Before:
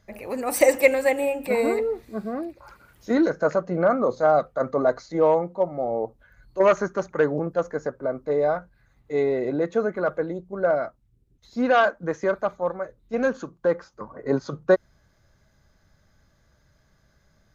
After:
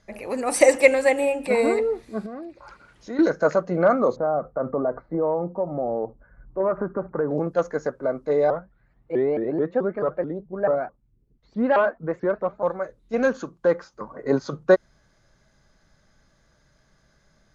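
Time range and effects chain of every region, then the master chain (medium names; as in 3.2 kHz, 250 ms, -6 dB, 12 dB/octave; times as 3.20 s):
2.26–3.19 s: low-pass 6.7 kHz + compression 2:1, threshold -40 dBFS
4.16–7.31 s: bass shelf 460 Hz +6 dB + compression 3:1, threshold -24 dBFS + low-pass 1.4 kHz 24 dB/octave
8.50–12.63 s: tape spacing loss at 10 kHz 37 dB + vibrato with a chosen wave saw up 4.6 Hz, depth 250 cents
whole clip: elliptic low-pass 11 kHz, stop band 50 dB; peaking EQ 81 Hz -10.5 dB 0.72 oct; trim +3 dB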